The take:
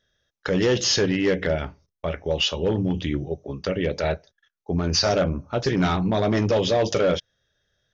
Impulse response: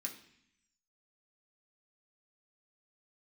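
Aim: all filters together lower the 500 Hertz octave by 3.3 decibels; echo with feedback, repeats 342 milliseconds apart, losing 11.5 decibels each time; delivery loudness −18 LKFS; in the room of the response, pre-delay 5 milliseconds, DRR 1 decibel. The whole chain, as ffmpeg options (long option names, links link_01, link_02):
-filter_complex "[0:a]equalizer=frequency=500:width_type=o:gain=-4,aecho=1:1:342|684|1026:0.266|0.0718|0.0194,asplit=2[link_01][link_02];[1:a]atrim=start_sample=2205,adelay=5[link_03];[link_02][link_03]afir=irnorm=-1:irlink=0,volume=1dB[link_04];[link_01][link_04]amix=inputs=2:normalize=0,volume=3.5dB"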